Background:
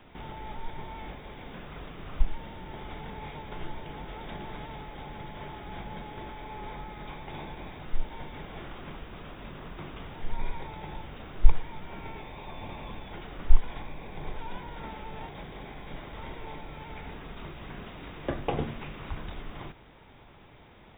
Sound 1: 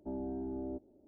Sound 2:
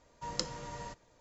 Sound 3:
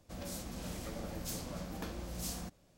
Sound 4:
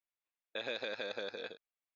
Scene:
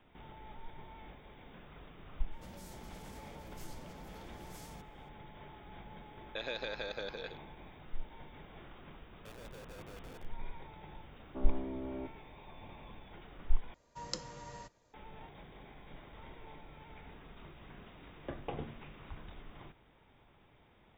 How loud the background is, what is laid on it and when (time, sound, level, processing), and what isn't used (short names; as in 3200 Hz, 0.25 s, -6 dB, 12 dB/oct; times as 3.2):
background -11 dB
2.32 add 3 -5.5 dB + limiter -38.5 dBFS
5.8 add 4 -0.5 dB
8.7 add 4 -7 dB + Schmitt trigger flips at -41 dBFS
11.29 add 1 -1.5 dB + Doppler distortion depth 0.46 ms
13.74 replace with 2 -5 dB